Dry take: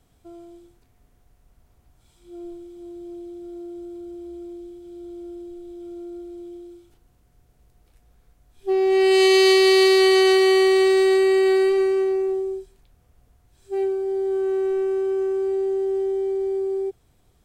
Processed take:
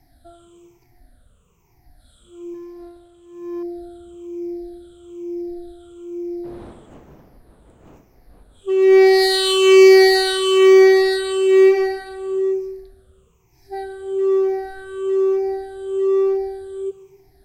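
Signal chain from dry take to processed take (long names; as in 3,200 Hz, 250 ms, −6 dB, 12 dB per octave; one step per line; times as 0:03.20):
rippled gain that drifts along the octave scale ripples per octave 0.75, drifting −1.1 Hz, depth 22 dB
0:06.43–0:08.69: wind on the microphone 480 Hz −41 dBFS
convolution reverb RT60 1.2 s, pre-delay 108 ms, DRR 15.5 dB
in parallel at −10 dB: wave folding −16 dBFS
0:02.54–0:03.63: on the sum: power curve on the samples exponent 1.4
level −3 dB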